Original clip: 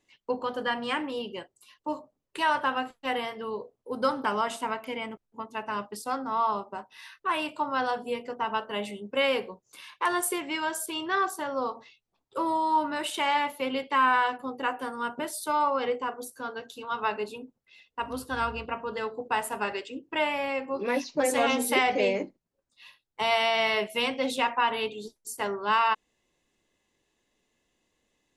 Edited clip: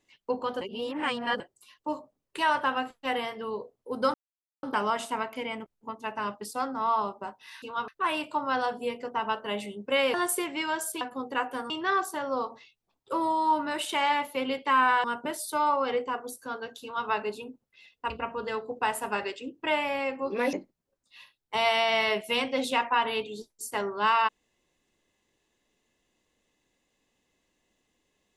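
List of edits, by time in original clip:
0.61–1.40 s: reverse
4.14 s: insert silence 0.49 s
9.39–10.08 s: delete
14.29–14.98 s: move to 10.95 s
16.76–17.02 s: copy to 7.13 s
18.04–18.59 s: delete
21.02–22.19 s: delete

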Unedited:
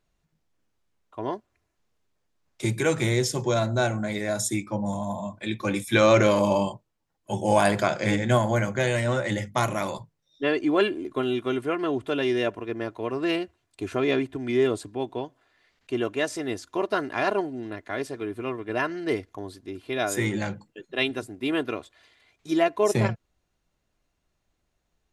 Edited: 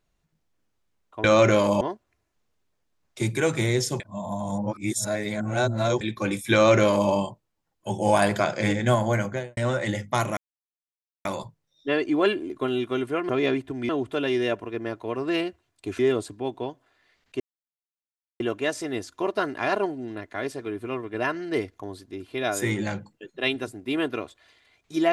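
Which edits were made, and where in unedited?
3.43–5.44 s: reverse
5.96–6.53 s: copy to 1.24 s
8.66–9.00 s: studio fade out
9.80 s: insert silence 0.88 s
13.94–14.54 s: move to 11.84 s
15.95 s: insert silence 1.00 s

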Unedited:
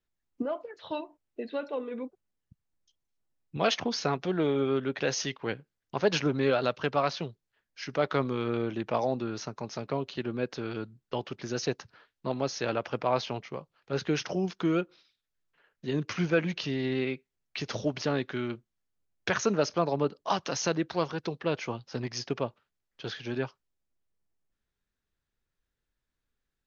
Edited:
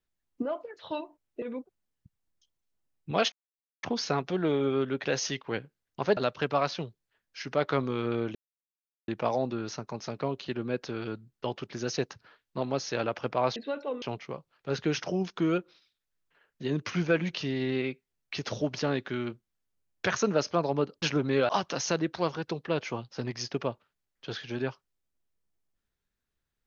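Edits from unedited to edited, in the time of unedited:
1.42–1.88 s: move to 13.25 s
3.78 s: insert silence 0.51 s
6.12–6.59 s: move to 20.25 s
8.77 s: insert silence 0.73 s

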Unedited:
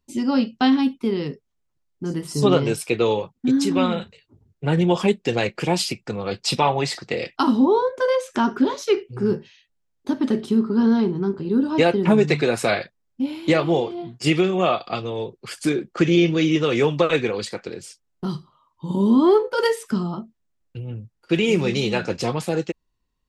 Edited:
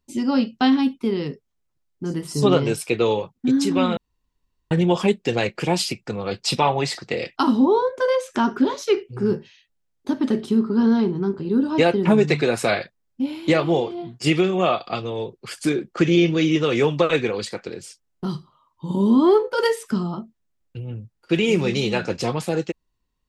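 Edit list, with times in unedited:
3.97–4.71 s: room tone

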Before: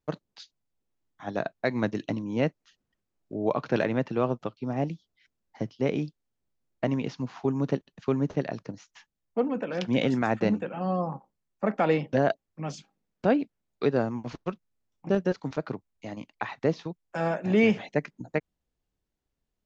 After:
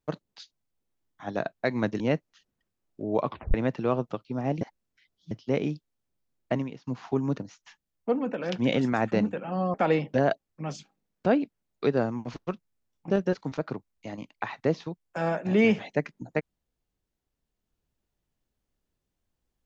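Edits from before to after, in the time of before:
2.00–2.32 s: delete
3.59 s: tape stop 0.27 s
4.93–5.63 s: reverse
6.87–7.19 s: fade out quadratic, to -16.5 dB
7.70–8.67 s: delete
11.03–11.73 s: delete

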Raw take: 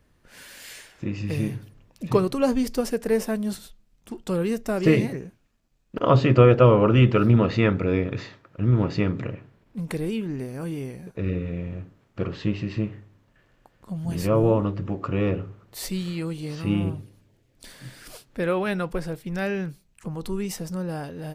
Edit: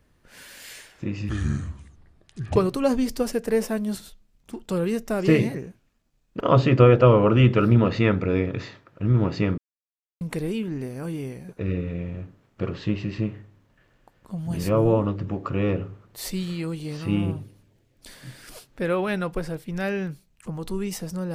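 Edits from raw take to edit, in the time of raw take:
1.29–2.14 s: speed 67%
9.16–9.79 s: mute

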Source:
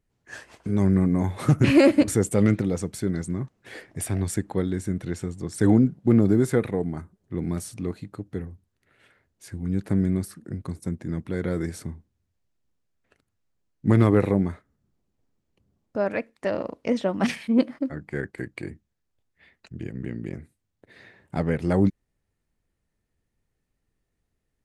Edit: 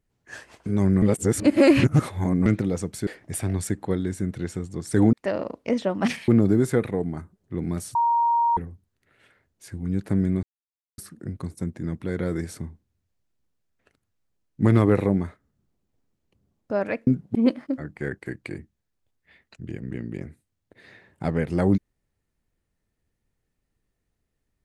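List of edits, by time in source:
1.02–2.46 s: reverse
3.07–3.74 s: delete
5.80–6.08 s: swap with 16.32–17.47 s
7.75–8.37 s: bleep 937 Hz -17.5 dBFS
10.23 s: insert silence 0.55 s

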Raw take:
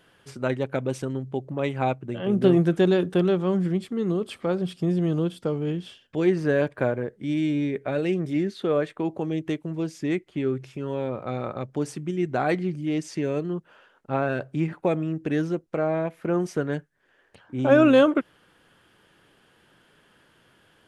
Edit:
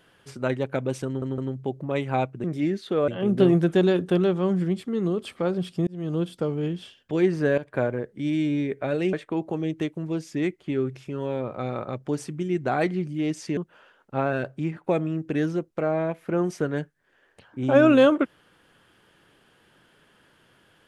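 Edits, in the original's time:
1.06 s: stutter 0.16 s, 3 plays
4.91–5.26 s: fade in
6.62–6.93 s: fade in equal-power, from -15 dB
8.17–8.81 s: move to 2.12 s
13.25–13.53 s: delete
14.40–14.80 s: fade out, to -6 dB

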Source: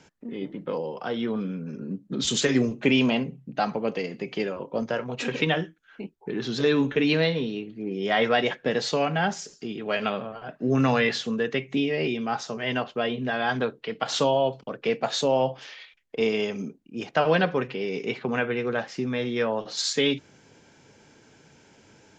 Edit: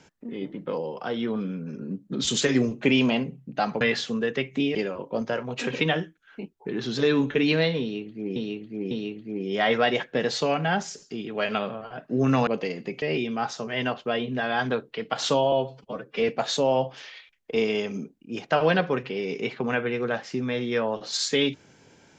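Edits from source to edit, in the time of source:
3.81–4.36 s: swap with 10.98–11.92 s
7.42–7.97 s: loop, 3 plays
14.42–14.93 s: stretch 1.5×

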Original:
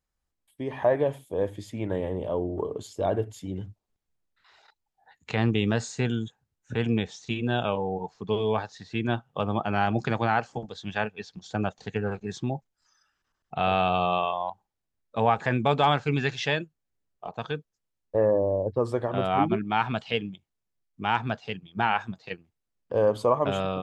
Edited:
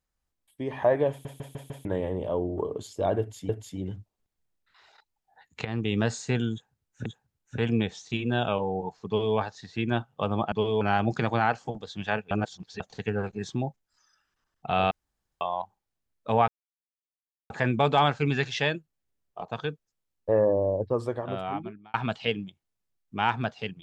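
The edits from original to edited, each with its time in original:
1.10 s: stutter in place 0.15 s, 5 plays
3.19–3.49 s: loop, 2 plays
5.35–5.73 s: fade in, from -12.5 dB
6.23–6.76 s: loop, 2 plays
8.24–8.53 s: copy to 9.69 s
11.19–11.68 s: reverse
13.79–14.29 s: room tone
15.36 s: insert silence 1.02 s
18.62–19.80 s: fade out

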